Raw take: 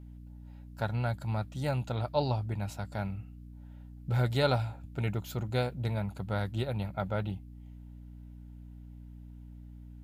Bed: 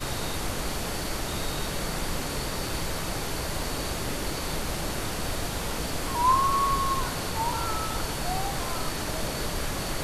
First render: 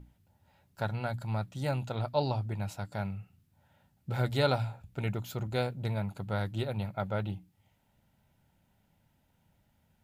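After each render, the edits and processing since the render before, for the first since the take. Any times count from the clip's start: hum notches 60/120/180/240/300 Hz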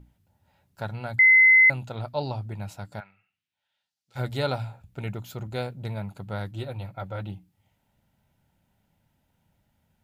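1.19–1.70 s: bleep 2.05 kHz -12 dBFS; 2.99–4.15 s: band-pass filter 1.6 kHz -> 6.1 kHz, Q 1.8; 6.51–7.21 s: comb of notches 210 Hz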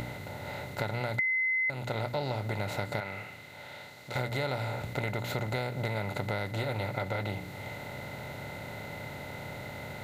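spectral levelling over time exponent 0.4; compression 6:1, threshold -29 dBFS, peak gain reduction 14.5 dB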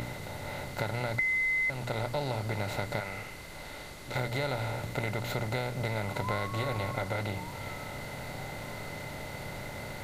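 add bed -17 dB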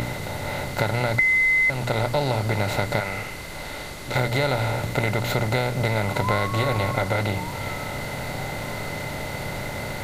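trim +9.5 dB

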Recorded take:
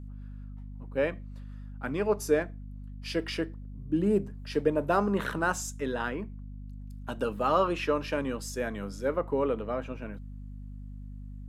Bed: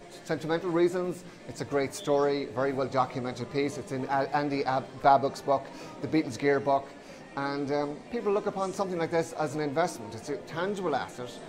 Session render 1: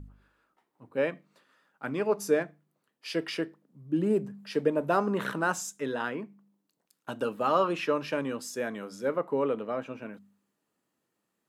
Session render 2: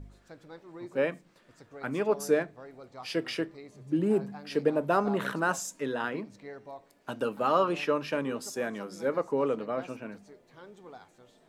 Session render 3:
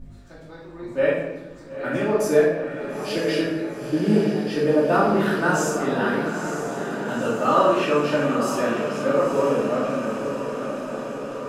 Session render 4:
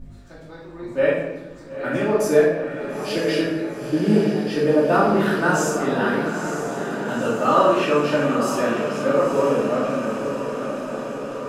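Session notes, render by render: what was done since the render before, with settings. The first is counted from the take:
de-hum 50 Hz, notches 5
add bed -19 dB
on a send: echo that smears into a reverb 930 ms, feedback 67%, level -8 dB; on the sum: simulated room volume 390 m³, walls mixed, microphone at 2.6 m
trim +1.5 dB

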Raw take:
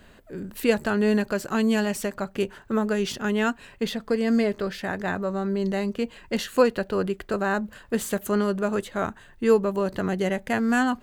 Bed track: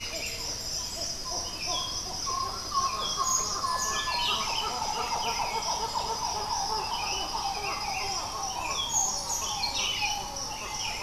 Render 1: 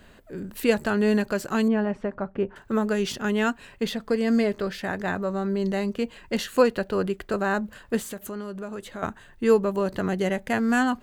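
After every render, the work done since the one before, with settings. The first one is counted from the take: 1.68–2.56 s: low-pass 1.4 kHz; 7.99–9.03 s: compression 2.5:1, threshold -35 dBFS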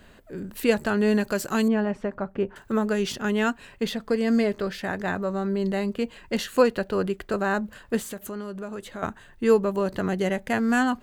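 1.22–2.72 s: treble shelf 5.3 kHz +7.5 dB; 5.49–6.01 s: peaking EQ 5.9 kHz -8 dB 0.27 oct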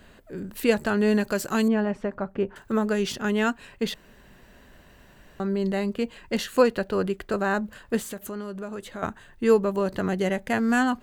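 3.94–5.40 s: room tone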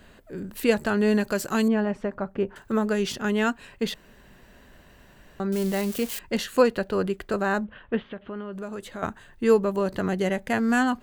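5.52–6.19 s: zero-crossing glitches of -23.5 dBFS; 7.64–8.53 s: elliptic low-pass 3.3 kHz, stop band 60 dB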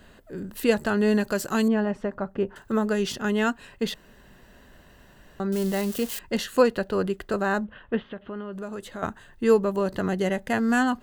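band-stop 2.3 kHz, Q 9.5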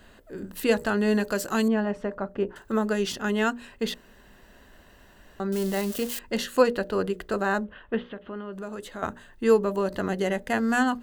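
peaking EQ 140 Hz -6.5 dB 0.65 oct; hum notches 60/120/180/240/300/360/420/480/540/600 Hz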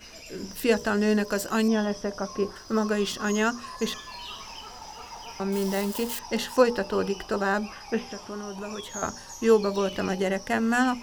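add bed track -11.5 dB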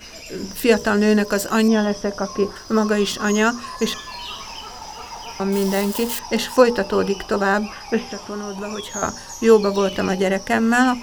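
trim +7 dB; peak limiter -2 dBFS, peak gain reduction 1 dB

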